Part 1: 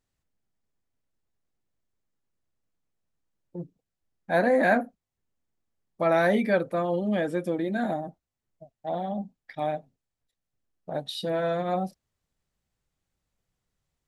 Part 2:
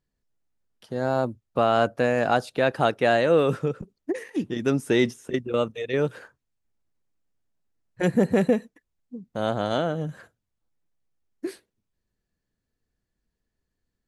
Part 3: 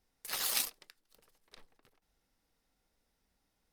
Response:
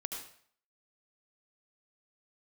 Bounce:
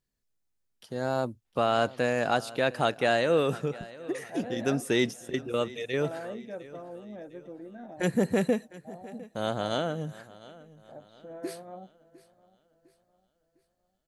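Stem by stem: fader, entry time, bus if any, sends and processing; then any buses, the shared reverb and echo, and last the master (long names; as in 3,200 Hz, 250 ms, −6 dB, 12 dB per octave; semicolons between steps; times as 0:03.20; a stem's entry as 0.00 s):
−14.5 dB, 0.00 s, no send, echo send −20 dB, Bessel low-pass filter 850 Hz, order 2; parametric band 170 Hz −4.5 dB
−5.0 dB, 0.00 s, no send, echo send −19.5 dB, no processing
−10.5 dB, 1.45 s, no send, no echo send, low-pass filter 3,400 Hz 24 dB per octave; low-shelf EQ 410 Hz −10 dB; compressor whose output falls as the input rises −48 dBFS, ratio −0.5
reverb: not used
echo: repeating echo 705 ms, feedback 42%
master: high-shelf EQ 3,000 Hz +8 dB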